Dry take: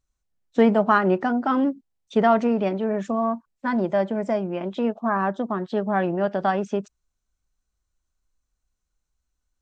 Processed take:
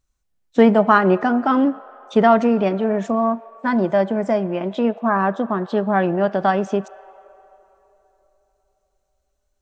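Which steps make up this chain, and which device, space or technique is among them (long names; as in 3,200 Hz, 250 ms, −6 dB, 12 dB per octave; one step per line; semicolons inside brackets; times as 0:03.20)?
filtered reverb send (on a send: high-pass filter 530 Hz 24 dB per octave + low-pass filter 3,800 Hz + convolution reverb RT60 3.6 s, pre-delay 12 ms, DRR 17 dB)
on the sum: level +4.5 dB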